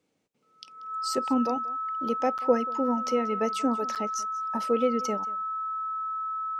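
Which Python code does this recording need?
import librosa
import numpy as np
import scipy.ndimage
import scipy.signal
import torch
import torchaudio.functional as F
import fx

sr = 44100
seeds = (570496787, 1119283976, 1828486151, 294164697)

y = fx.notch(x, sr, hz=1300.0, q=30.0)
y = fx.fix_interpolate(y, sr, at_s=(2.38, 3.95), length_ms=7.5)
y = fx.fix_echo_inverse(y, sr, delay_ms=185, level_db=-20.5)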